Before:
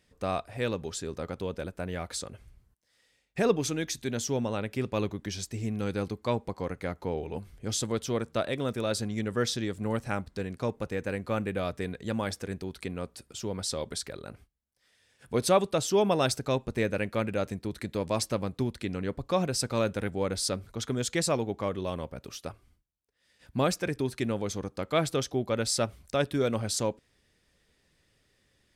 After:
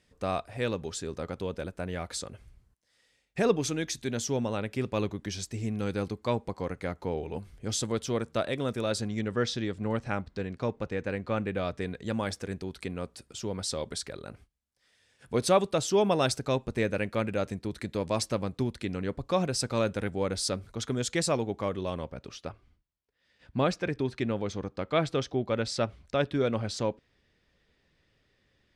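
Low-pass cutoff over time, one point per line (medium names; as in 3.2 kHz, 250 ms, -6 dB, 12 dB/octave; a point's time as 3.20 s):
8.83 s 11 kHz
9.41 s 5.1 kHz
11.41 s 5.1 kHz
12.23 s 10 kHz
21.68 s 10 kHz
22.50 s 4.3 kHz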